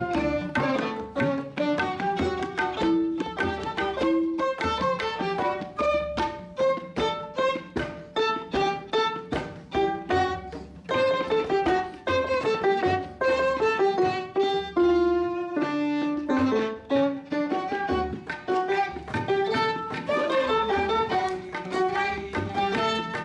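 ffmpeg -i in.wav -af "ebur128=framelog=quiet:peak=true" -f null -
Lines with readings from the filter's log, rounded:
Integrated loudness:
  I:         -26.1 LUFS
  Threshold: -36.2 LUFS
Loudness range:
  LRA:         3.0 LU
  Threshold: -46.1 LUFS
  LRA low:   -27.5 LUFS
  LRA high:  -24.4 LUFS
True peak:
  Peak:      -12.9 dBFS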